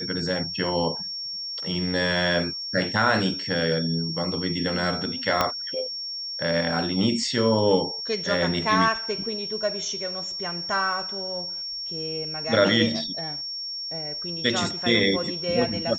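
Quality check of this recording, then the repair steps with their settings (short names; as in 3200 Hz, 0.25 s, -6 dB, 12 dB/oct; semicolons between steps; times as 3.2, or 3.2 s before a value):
tone 5500 Hz -30 dBFS
5.41 pop -6 dBFS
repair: de-click; notch 5500 Hz, Q 30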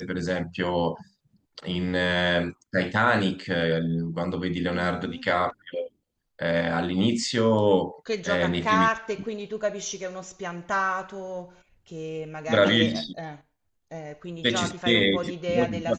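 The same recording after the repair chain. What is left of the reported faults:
5.41 pop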